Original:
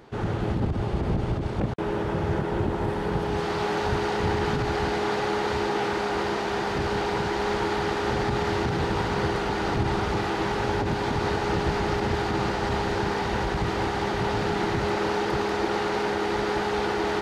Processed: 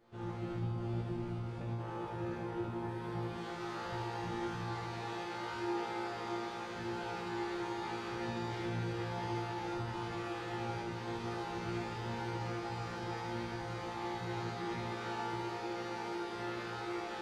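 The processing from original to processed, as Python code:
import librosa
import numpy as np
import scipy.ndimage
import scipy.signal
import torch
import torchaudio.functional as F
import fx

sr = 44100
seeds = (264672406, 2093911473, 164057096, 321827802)

y = fx.resonator_bank(x, sr, root=46, chord='fifth', decay_s=0.79)
y = y + 10.0 ** (-5.0 / 20.0) * np.pad(y, (int(78 * sr / 1000.0), 0))[:len(y)]
y = y * 10.0 ** (3.0 / 20.0)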